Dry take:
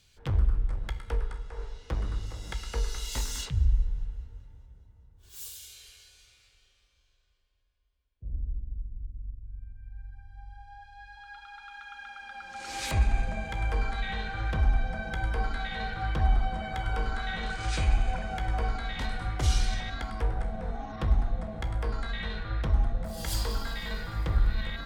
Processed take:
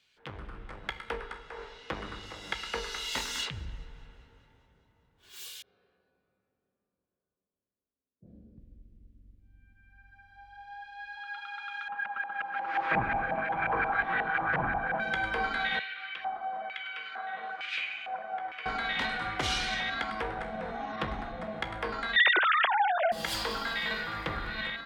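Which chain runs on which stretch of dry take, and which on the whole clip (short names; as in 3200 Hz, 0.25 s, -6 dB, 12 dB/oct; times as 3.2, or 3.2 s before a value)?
5.62–8.58 low-pass opened by the level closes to 380 Hz, open at -29 dBFS + speaker cabinet 110–5500 Hz, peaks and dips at 200 Hz +8 dB, 2200 Hz -8 dB, 3100 Hz -10 dB + doubler 27 ms -5.5 dB
11.88–15 minimum comb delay 6.1 ms + LFO low-pass saw up 5.6 Hz 760–1900 Hz
15.79–18.66 notch 900 Hz, Q 5.2 + LFO band-pass square 1.1 Hz 810–2600 Hz
22.16–23.12 sine-wave speech + steep high-pass 200 Hz 72 dB/oct + compressor 2:1, threshold -29 dBFS
whole clip: three-band isolator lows -20 dB, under 160 Hz, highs -18 dB, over 3400 Hz; AGC gain up to 9 dB; tilt shelf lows -6 dB, about 1400 Hz; gain -2 dB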